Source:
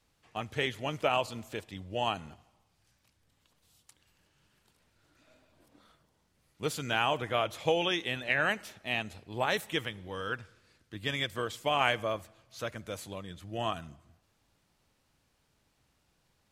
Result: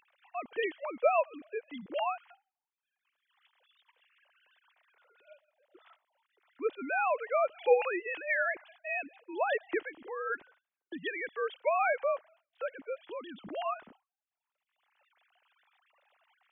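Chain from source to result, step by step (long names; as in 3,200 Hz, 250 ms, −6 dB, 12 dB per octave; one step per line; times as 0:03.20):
three sine waves on the formant tracks
downward expander −53 dBFS
upward compression, threshold −36 dBFS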